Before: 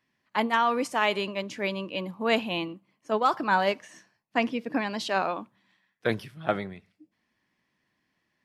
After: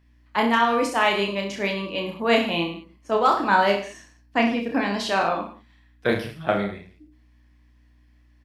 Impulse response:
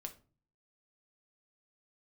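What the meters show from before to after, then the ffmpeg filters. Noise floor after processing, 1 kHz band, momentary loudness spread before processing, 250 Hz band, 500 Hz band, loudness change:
-57 dBFS, +5.0 dB, 9 LU, +6.0 dB, +5.5 dB, +5.0 dB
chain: -af "aeval=exprs='val(0)+0.000794*(sin(2*PI*60*n/s)+sin(2*PI*2*60*n/s)/2+sin(2*PI*3*60*n/s)/3+sin(2*PI*4*60*n/s)/4+sin(2*PI*5*60*n/s)/5)':c=same,aecho=1:1:30|64.5|104.2|149.8|202.3:0.631|0.398|0.251|0.158|0.1,volume=3dB"

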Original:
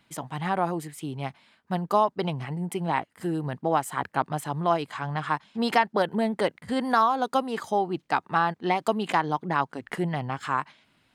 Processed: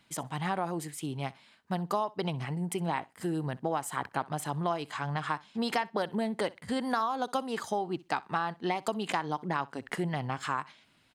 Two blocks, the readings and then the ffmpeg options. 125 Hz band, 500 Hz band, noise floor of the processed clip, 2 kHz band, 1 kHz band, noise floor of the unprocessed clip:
-3.5 dB, -6.0 dB, -66 dBFS, -5.5 dB, -7.0 dB, -68 dBFS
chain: -filter_complex "[0:a]equalizer=f=6.8k:t=o:w=1.9:g=4.5,acompressor=threshold=-26dB:ratio=3,asplit=2[a][b];[b]aecho=0:1:63|126:0.0794|0.0135[c];[a][c]amix=inputs=2:normalize=0,volume=-2dB"

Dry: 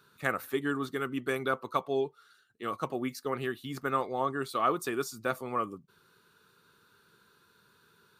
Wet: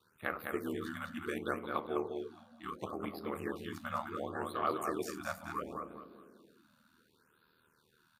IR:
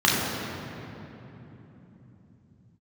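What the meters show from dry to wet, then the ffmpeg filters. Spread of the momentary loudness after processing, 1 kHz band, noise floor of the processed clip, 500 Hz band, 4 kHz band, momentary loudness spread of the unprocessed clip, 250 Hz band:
11 LU, -6.5 dB, -72 dBFS, -6.5 dB, -7.0 dB, 7 LU, -5.0 dB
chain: -filter_complex "[0:a]flanger=delay=8.5:depth=8.2:regen=-70:speed=0.7:shape=sinusoidal,aeval=exprs='val(0)*sin(2*PI*39*n/s)':c=same,aecho=1:1:206|412|618|824:0.562|0.174|0.054|0.0168,asplit=2[a][b];[1:a]atrim=start_sample=2205,asetrate=83790,aresample=44100,lowpass=1.1k[c];[b][c]afir=irnorm=-1:irlink=0,volume=-29dB[d];[a][d]amix=inputs=2:normalize=0,afftfilt=real='re*(1-between(b*sr/1024,360*pow(7500/360,0.5+0.5*sin(2*PI*0.7*pts/sr))/1.41,360*pow(7500/360,0.5+0.5*sin(2*PI*0.7*pts/sr))*1.41))':imag='im*(1-between(b*sr/1024,360*pow(7500/360,0.5+0.5*sin(2*PI*0.7*pts/sr))/1.41,360*pow(7500/360,0.5+0.5*sin(2*PI*0.7*pts/sr))*1.41))':win_size=1024:overlap=0.75"

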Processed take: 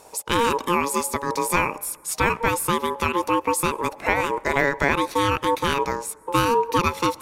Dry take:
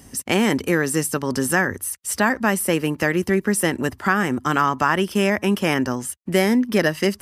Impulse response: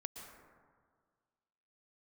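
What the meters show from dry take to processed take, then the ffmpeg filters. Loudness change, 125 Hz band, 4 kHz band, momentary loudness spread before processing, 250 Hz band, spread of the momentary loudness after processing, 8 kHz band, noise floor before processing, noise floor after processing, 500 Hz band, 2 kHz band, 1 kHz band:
-2.0 dB, -4.5 dB, -0.5 dB, 4 LU, -7.5 dB, 5 LU, -2.0 dB, -49 dBFS, -47 dBFS, -2.0 dB, -2.5 dB, +3.0 dB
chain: -filter_complex "[0:a]bandreject=f=51.02:t=h:w=4,bandreject=f=102.04:t=h:w=4,bandreject=f=153.06:t=h:w=4,aeval=exprs='val(0)*sin(2*PI*700*n/s)':c=same,asplit=2[a][b];[1:a]atrim=start_sample=2205[c];[b][c]afir=irnorm=-1:irlink=0,volume=-15.5dB[d];[a][d]amix=inputs=2:normalize=0"

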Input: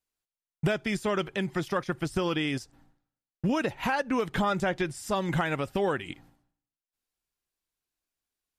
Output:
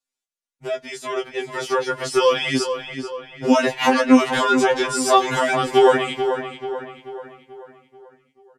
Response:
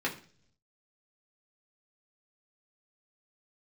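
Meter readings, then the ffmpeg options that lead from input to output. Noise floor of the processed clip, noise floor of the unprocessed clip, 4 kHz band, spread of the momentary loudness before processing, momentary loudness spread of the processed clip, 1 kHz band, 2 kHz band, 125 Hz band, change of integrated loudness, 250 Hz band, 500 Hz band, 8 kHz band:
under -85 dBFS, under -85 dBFS, +12.0 dB, 5 LU, 16 LU, +12.0 dB, +9.0 dB, -3.0 dB, +10.0 dB, +9.5 dB, +12.0 dB, +15.0 dB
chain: -filter_complex "[0:a]lowpass=8.6k,bass=f=250:g=-10,treble=f=4k:g=5,acrossover=split=140|900[a][b][c];[a]acompressor=threshold=-57dB:ratio=6[d];[c]alimiter=level_in=3dB:limit=-24dB:level=0:latency=1:release=32,volume=-3dB[e];[d][b][e]amix=inputs=3:normalize=0,dynaudnorm=f=310:g=11:m=16dB,asplit=2[f][g];[g]adelay=12,volume=-9dB[h];[f][h]amix=inputs=2:normalize=0,asplit=2[i][j];[j]adelay=436,lowpass=f=3.5k:p=1,volume=-8.5dB,asplit=2[k][l];[l]adelay=436,lowpass=f=3.5k:p=1,volume=0.5,asplit=2[m][n];[n]adelay=436,lowpass=f=3.5k:p=1,volume=0.5,asplit=2[o][p];[p]adelay=436,lowpass=f=3.5k:p=1,volume=0.5,asplit=2[q][r];[r]adelay=436,lowpass=f=3.5k:p=1,volume=0.5,asplit=2[s][t];[t]adelay=436,lowpass=f=3.5k:p=1,volume=0.5[u];[i][k][m][o][q][s][u]amix=inputs=7:normalize=0,afftfilt=real='re*2.45*eq(mod(b,6),0)':imag='im*2.45*eq(mod(b,6),0)':win_size=2048:overlap=0.75,volume=1.5dB"

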